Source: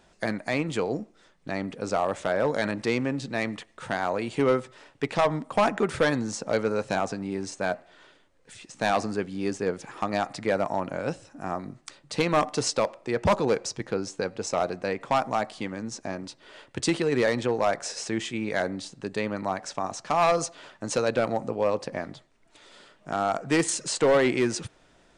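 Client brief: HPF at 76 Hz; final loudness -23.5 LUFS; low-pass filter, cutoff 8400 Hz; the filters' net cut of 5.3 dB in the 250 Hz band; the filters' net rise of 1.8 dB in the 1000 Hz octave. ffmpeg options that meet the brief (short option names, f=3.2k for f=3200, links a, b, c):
-af "highpass=76,lowpass=8.4k,equalizer=f=250:t=o:g=-7.5,equalizer=f=1k:t=o:g=3,volume=4.5dB"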